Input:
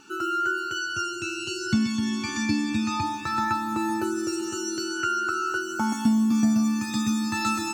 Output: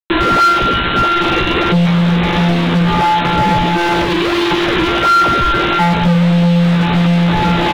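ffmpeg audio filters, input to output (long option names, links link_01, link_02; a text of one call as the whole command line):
ffmpeg -i in.wav -filter_complex "[0:a]afftfilt=real='hypot(re,im)*cos(PI*b)':imag='0':win_size=1024:overlap=0.75,asplit=2[link_01][link_02];[link_02]acrusher=samples=37:mix=1:aa=0.000001:lfo=1:lforange=59.2:lforate=1.5,volume=-3.5dB[link_03];[link_01][link_03]amix=inputs=2:normalize=0,highshelf=frequency=2400:gain=-11,aresample=8000,acrusher=bits=5:mix=0:aa=0.000001,aresample=44100,volume=27.5dB,asoftclip=hard,volume=-27.5dB,asplit=2[link_04][link_05];[link_05]adelay=16,volume=-4dB[link_06];[link_04][link_06]amix=inputs=2:normalize=0,alimiter=level_in=31dB:limit=-1dB:release=50:level=0:latency=1,volume=-5.5dB" out.wav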